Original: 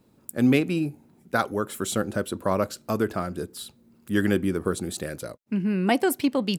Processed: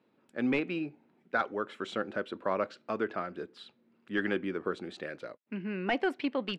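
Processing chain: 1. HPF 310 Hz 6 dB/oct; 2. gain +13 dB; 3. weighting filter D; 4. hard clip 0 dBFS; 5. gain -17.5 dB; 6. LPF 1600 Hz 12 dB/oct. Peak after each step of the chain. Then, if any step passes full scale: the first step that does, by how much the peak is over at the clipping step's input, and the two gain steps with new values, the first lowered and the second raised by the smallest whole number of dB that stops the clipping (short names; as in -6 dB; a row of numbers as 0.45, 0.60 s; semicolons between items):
-8.5, +4.5, +10.0, 0.0, -17.5, -17.5 dBFS; step 2, 10.0 dB; step 2 +3 dB, step 5 -7.5 dB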